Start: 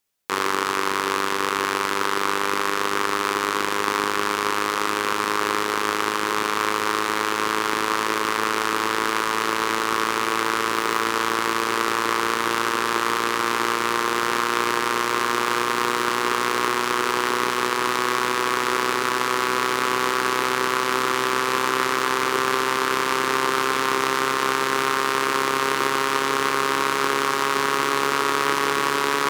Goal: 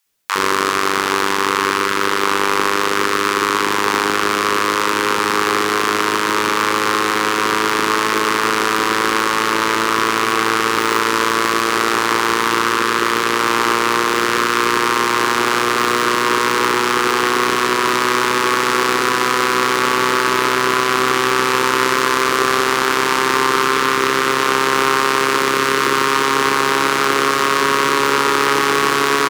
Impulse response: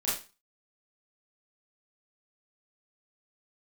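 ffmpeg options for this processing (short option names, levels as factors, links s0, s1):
-filter_complex "[0:a]acrossover=split=740[s0][s1];[s0]adelay=60[s2];[s2][s1]amix=inputs=2:normalize=0,acontrast=74,volume=1.12"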